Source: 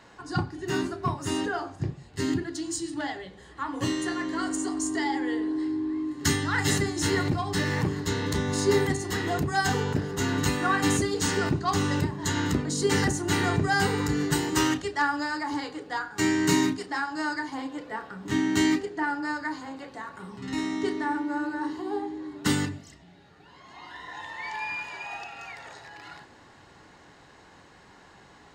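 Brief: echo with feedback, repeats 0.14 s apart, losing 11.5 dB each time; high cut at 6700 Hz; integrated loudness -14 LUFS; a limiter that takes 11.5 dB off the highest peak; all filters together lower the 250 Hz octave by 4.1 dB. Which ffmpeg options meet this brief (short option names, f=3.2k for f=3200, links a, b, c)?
-af "lowpass=6.7k,equalizer=f=250:t=o:g=-5.5,alimiter=limit=-23dB:level=0:latency=1,aecho=1:1:140|280|420:0.266|0.0718|0.0194,volume=19dB"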